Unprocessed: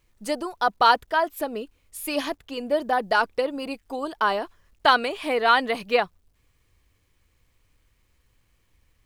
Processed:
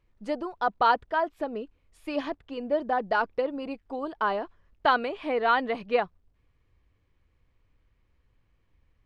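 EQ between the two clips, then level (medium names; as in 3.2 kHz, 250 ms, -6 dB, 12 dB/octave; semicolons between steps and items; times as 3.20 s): tape spacing loss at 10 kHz 26 dB; -1.5 dB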